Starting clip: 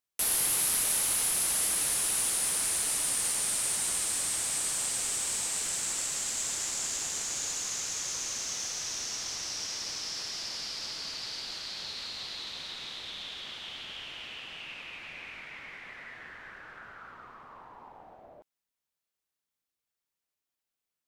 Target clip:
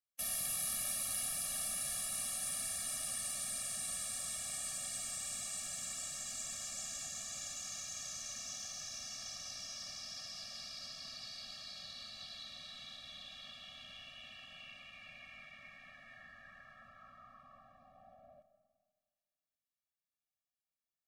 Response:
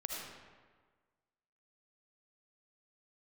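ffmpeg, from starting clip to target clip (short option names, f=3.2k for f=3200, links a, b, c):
-filter_complex "[0:a]asplit=2[a][b];[1:a]atrim=start_sample=2205,adelay=73[c];[b][c]afir=irnorm=-1:irlink=0,volume=-13dB[d];[a][d]amix=inputs=2:normalize=0,afftfilt=real='re*eq(mod(floor(b*sr/1024/270),2),0)':imag='im*eq(mod(floor(b*sr/1024/270),2),0)':win_size=1024:overlap=0.75,volume=-7dB"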